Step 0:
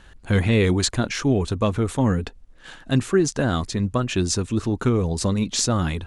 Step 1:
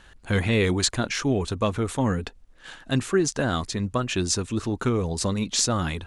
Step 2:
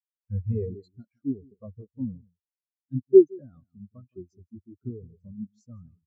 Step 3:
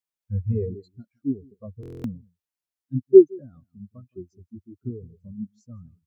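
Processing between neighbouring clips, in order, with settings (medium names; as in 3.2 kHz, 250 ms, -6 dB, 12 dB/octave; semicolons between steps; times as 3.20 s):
bass shelf 450 Hz -5 dB
delay 166 ms -7 dB; spectral contrast expander 4:1; trim +2 dB
buffer glitch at 1.81 s, samples 1024, times 9; trim +3 dB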